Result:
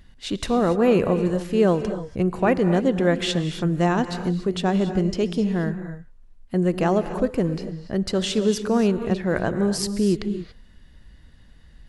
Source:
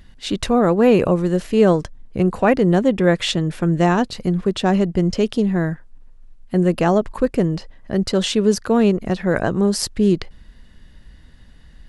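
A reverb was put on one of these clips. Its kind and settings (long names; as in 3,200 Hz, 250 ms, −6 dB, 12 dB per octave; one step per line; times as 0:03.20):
reverb whose tail is shaped and stops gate 310 ms rising, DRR 10 dB
level −4.5 dB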